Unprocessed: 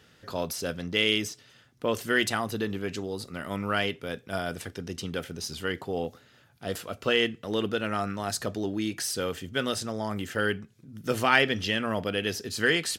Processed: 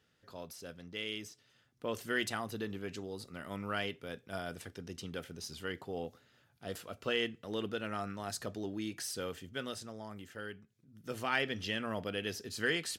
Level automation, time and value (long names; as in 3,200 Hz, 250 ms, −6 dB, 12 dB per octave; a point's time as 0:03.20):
0:01.11 −15.5 dB
0:02.00 −9 dB
0:09.27 −9 dB
0:10.51 −17.5 dB
0:11.71 −8.5 dB